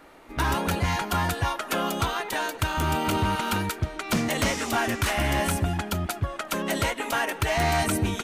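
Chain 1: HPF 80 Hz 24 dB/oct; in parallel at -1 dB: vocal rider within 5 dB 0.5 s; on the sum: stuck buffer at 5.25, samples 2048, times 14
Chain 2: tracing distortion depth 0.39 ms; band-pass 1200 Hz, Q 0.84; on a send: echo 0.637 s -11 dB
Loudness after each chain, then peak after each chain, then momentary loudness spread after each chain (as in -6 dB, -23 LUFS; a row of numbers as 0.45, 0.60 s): -21.0, -30.5 LUFS; -6.0, -15.5 dBFS; 3, 6 LU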